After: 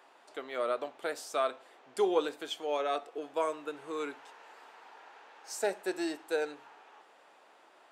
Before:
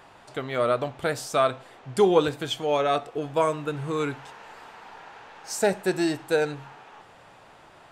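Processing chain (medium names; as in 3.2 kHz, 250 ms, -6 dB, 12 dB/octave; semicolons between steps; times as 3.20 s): high-pass 290 Hz 24 dB/octave; trim -8.5 dB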